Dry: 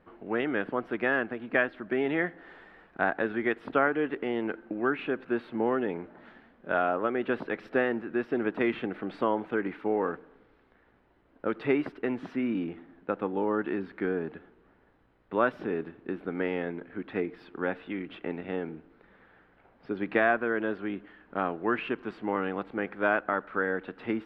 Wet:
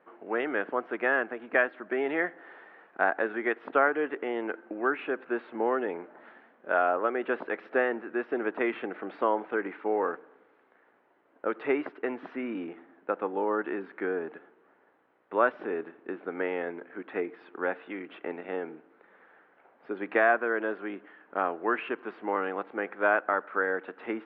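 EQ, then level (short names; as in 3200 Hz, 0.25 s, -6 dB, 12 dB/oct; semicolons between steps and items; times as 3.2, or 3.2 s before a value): BPF 400–2300 Hz; +2.5 dB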